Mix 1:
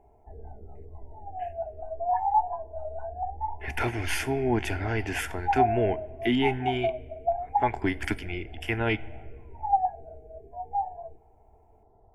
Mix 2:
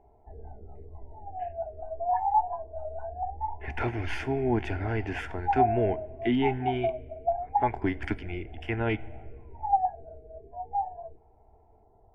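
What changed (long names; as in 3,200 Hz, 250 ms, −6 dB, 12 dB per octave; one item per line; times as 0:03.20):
speech: add head-to-tape spacing loss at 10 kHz 23 dB
background: send −9.5 dB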